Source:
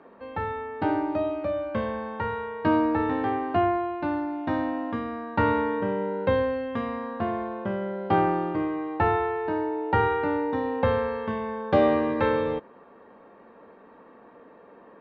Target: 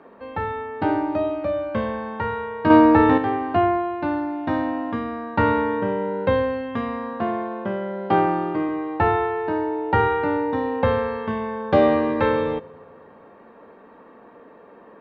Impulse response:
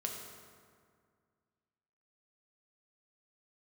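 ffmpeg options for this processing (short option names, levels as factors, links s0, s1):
-filter_complex "[0:a]asettb=1/sr,asplit=3[s0][s1][s2];[s0]atrim=end=2.704[s3];[s1]atrim=start=2.7:end=3.18,asetpts=PTS-STARTPTS,afade=t=in:d=0.004:c=qsin,afade=t=out:st=0.476:d=0.004:c=qsin,acontrast=76[s4];[s2]atrim=start=3.176[s5];[s3][s4]acrossfade=d=0.004:c1=hsin:c2=qsin[s6];[s6][s5]acrossfade=d=0.004:c1=qsin:c2=hsin,asettb=1/sr,asplit=3[s7][s8][s9];[s7]atrim=end=7.134[s10];[s8]atrim=start=7.13:end=8.69,asetpts=PTS-STARTPTS,afade=t=in:d=0.004:c=qsin,afade=t=out:st=1.556:d=0.004:c=qsin,highpass=140[s11];[s9]atrim=start=8.686[s12];[s10][s11]acrossfade=d=0.004:c1=hsin:c2=qsin[s13];[s13][s12]acrossfade=d=0.004:c1=qsin:c2=hsin,asplit=2[s14][s15];[1:a]atrim=start_sample=2205[s16];[s15][s16]afir=irnorm=-1:irlink=0,volume=0.158[s17];[s14][s17]amix=inputs=2:normalize=0,volume=1.33"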